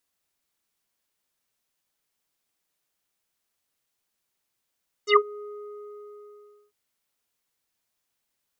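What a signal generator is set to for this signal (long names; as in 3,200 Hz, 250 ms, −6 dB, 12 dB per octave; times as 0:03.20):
subtractive voice square G#4 24 dB per octave, low-pass 1,000 Hz, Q 9.1, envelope 3 octaves, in 0.10 s, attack 83 ms, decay 0.07 s, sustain −21.5 dB, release 1.29 s, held 0.36 s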